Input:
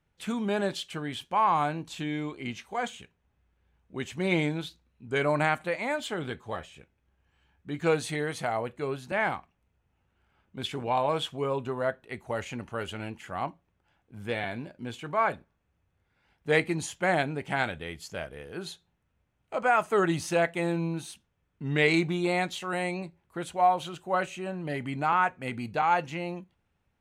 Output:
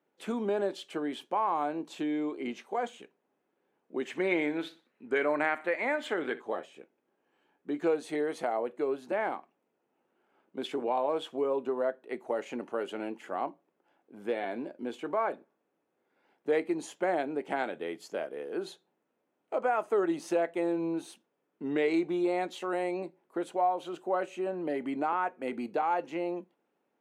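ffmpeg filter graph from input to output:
-filter_complex "[0:a]asettb=1/sr,asplit=3[a][b][c];[a]atrim=end=4.054[d];[b]atrim=start=4.05:end=6.42,asetpts=PTS-STARTPTS,afade=t=in:d=0.004:c=qsin,afade=t=out:st=2.366:d=0.004:c=qsin,equalizer=f=1.9k:t=o:w=1.1:g=11.5,aecho=1:1:61|122|183:0.106|0.0392|0.0145,atrim=end_sample=104517[e];[c]atrim=start=6.416[f];[d][e]acrossfade=d=0.004:c1=hsin:c2=qsin[g];[g][f]acrossfade=d=0.004:c1=qsin:c2=hsin,highpass=f=300:w=0.5412,highpass=f=300:w=1.3066,tiltshelf=f=920:g=8.5,acompressor=threshold=-32dB:ratio=2,volume=1.5dB"

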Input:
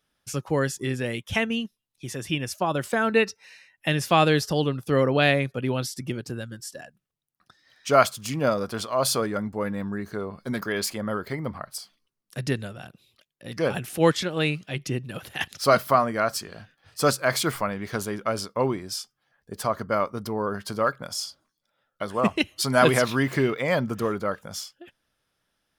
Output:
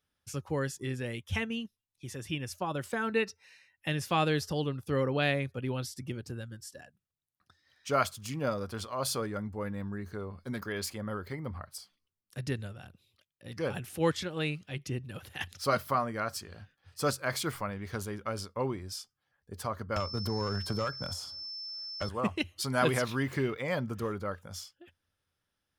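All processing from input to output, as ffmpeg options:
-filter_complex "[0:a]asettb=1/sr,asplit=3[a][b][c];[a]atrim=end=19.964[d];[b]atrim=start=19.96:end=22.09,asetpts=PTS-STARTPTS,afade=t=in:d=0.004:c=qsin,afade=t=out:st=2.126:d=0.004:c=qsin,aeval=exprs='val(0)+0.02*sin(2*PI*5300*n/s)':c=same,acrossover=split=120|1700[e][f][g];[e]acompressor=threshold=-45dB:ratio=4[h];[f]acompressor=threshold=-35dB:ratio=4[i];[g]acompressor=threshold=-45dB:ratio=4[j];[h][i][j]amix=inputs=3:normalize=0,aeval=exprs='0.141*sin(PI/2*2.51*val(0)/0.141)':c=same[k];[c]atrim=start=22.086[l];[d][k]acrossfade=d=0.004:c1=hsin:c2=qsin[m];[m][l]acrossfade=d=0.004:c1=qsin:c2=hsin,equalizer=f=86:w=3:g=14.5,bandreject=f=660:w=12,volume=-8.5dB"

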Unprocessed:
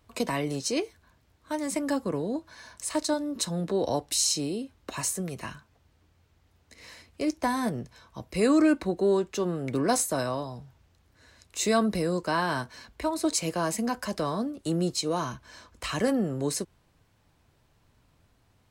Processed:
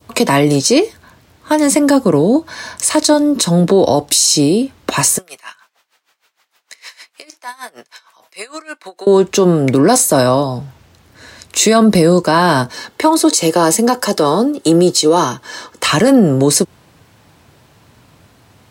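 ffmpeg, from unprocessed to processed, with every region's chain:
-filter_complex "[0:a]asettb=1/sr,asplit=3[a][b][c];[a]atrim=end=5.184[d];[b]atrim=start=5.18:end=9.07,asetpts=PTS-STARTPTS,afade=t=in:d=0.004:c=qsin,afade=t=out:st=3.886:d=0.004:c=qsin,highpass=1k,acompressor=threshold=-46dB:ratio=2.5:attack=3.2:release=140:knee=1:detection=peak,aeval=exprs='val(0)*pow(10,-20*(0.5-0.5*cos(2*PI*6.5*n/s))/20)':c=same[e];[c]atrim=start=9.066[f];[d][e]acrossfade=d=0.004:c1=hsin:c2=qsin[g];[g][f]acrossfade=d=0.004:c1=qsin:c2=hsin,asettb=1/sr,asplit=3[h][i][j];[h]atrim=end=12.744[k];[i]atrim=start=12.74:end=15.88,asetpts=PTS-STARTPTS,afade=t=in:d=0.004:c=qsin,afade=t=out:st=3.136:d=0.004:c=qsin,highpass=180,bandreject=f=2.4k:w=7.8,aecho=1:1:2.3:0.35,atrim=end_sample=138474[l];[j]atrim=start=15.876[m];[k][l]acrossfade=d=0.004:c1=hsin:c2=qsin[n];[n][m]acrossfade=d=0.004:c1=qsin:c2=hsin,highpass=100,adynamicequalizer=threshold=0.00562:dfrequency=1900:dqfactor=0.85:tfrequency=1900:tqfactor=0.85:attack=5:release=100:ratio=0.375:range=3:mode=cutabove:tftype=bell,alimiter=level_in=20.5dB:limit=-1dB:release=50:level=0:latency=1,volume=-1dB"

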